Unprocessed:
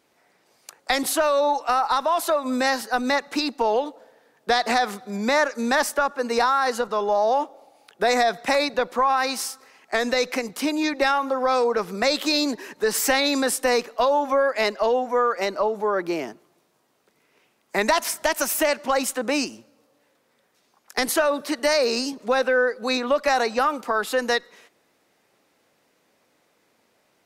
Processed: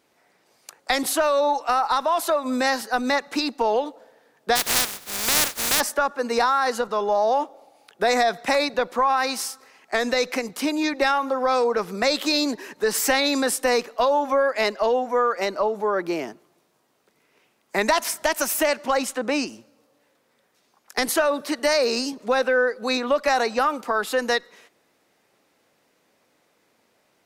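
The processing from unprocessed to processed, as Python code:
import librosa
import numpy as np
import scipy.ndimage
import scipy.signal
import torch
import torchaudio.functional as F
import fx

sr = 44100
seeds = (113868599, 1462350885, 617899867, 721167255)

y = fx.spec_flatten(x, sr, power=0.14, at=(4.55, 5.79), fade=0.02)
y = fx.high_shelf(y, sr, hz=fx.line((18.95, 12000.0), (19.47, 7500.0)), db=-11.0, at=(18.95, 19.47), fade=0.02)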